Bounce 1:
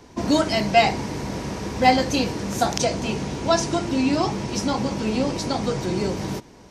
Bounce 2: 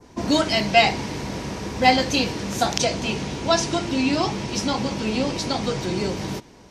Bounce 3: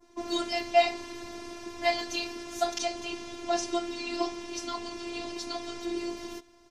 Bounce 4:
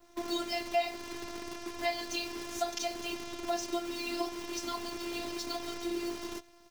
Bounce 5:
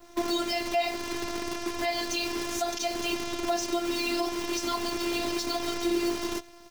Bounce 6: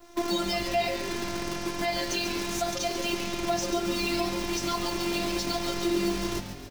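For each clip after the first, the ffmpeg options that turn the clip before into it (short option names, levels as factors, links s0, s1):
-af "adynamicequalizer=threshold=0.0112:dfrequency=3200:dqfactor=0.83:tfrequency=3200:tqfactor=0.83:attack=5:release=100:ratio=0.375:range=3:mode=boostabove:tftype=bell,volume=0.891"
-af "aecho=1:1:5.6:0.82,afftfilt=real='hypot(re,im)*cos(PI*b)':imag='0':win_size=512:overlap=0.75,volume=0.376"
-af "acrusher=bits=8:dc=4:mix=0:aa=0.000001,acompressor=threshold=0.0251:ratio=2"
-af "alimiter=limit=0.0631:level=0:latency=1:release=77,volume=2.66"
-filter_complex "[0:a]asplit=8[s0][s1][s2][s3][s4][s5][s6][s7];[s1]adelay=139,afreqshift=-150,volume=0.355[s8];[s2]adelay=278,afreqshift=-300,volume=0.207[s9];[s3]adelay=417,afreqshift=-450,volume=0.119[s10];[s4]adelay=556,afreqshift=-600,volume=0.0692[s11];[s5]adelay=695,afreqshift=-750,volume=0.0403[s12];[s6]adelay=834,afreqshift=-900,volume=0.0232[s13];[s7]adelay=973,afreqshift=-1050,volume=0.0135[s14];[s0][s8][s9][s10][s11][s12][s13][s14]amix=inputs=8:normalize=0"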